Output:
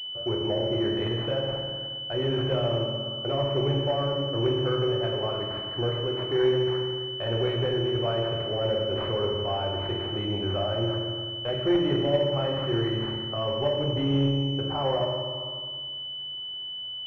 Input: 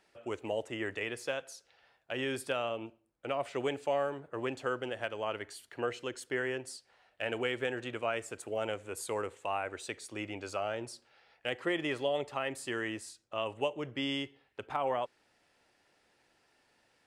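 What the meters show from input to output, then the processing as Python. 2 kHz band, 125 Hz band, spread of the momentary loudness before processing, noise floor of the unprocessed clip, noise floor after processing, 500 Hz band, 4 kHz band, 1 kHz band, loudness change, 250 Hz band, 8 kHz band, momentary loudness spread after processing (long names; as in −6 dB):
−3.0 dB, +20.5 dB, 9 LU, −72 dBFS, −36 dBFS, +9.0 dB, +16.0 dB, +3.5 dB, +9.0 dB, +11.5 dB, below −15 dB, 7 LU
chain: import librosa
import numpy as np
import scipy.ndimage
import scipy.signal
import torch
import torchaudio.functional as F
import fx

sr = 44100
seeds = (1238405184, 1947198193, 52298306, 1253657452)

p1 = fx.low_shelf_res(x, sr, hz=170.0, db=7.5, q=1.5)
p2 = fx.hum_notches(p1, sr, base_hz=50, count=5)
p3 = fx.rev_fdn(p2, sr, rt60_s=1.5, lf_ratio=1.5, hf_ratio=0.9, size_ms=16.0, drr_db=-1.0)
p4 = 10.0 ** (-32.0 / 20.0) * (np.abs((p3 / 10.0 ** (-32.0 / 20.0) + 3.0) % 4.0 - 2.0) - 1.0)
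p5 = p3 + (p4 * 10.0 ** (-7.5 / 20.0))
p6 = fx.dynamic_eq(p5, sr, hz=1100.0, q=0.88, threshold_db=-43.0, ratio=4.0, max_db=-6)
p7 = fx.pwm(p6, sr, carrier_hz=3000.0)
y = p7 * 10.0 ** (5.5 / 20.0)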